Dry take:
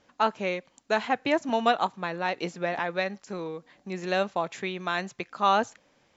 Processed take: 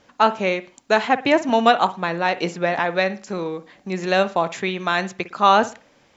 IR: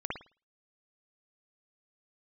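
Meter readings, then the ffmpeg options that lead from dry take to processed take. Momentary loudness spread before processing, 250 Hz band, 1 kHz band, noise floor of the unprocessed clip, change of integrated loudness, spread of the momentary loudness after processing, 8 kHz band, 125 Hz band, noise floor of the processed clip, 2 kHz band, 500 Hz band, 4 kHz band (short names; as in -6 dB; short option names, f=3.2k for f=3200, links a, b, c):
12 LU, +8.0 dB, +8.0 dB, -66 dBFS, +8.0 dB, 12 LU, n/a, +8.0 dB, -57 dBFS, +8.0 dB, +8.0 dB, +8.0 dB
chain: -filter_complex "[0:a]asplit=2[a][b];[1:a]atrim=start_sample=2205[c];[b][c]afir=irnorm=-1:irlink=0,volume=-16.5dB[d];[a][d]amix=inputs=2:normalize=0,volume=7dB"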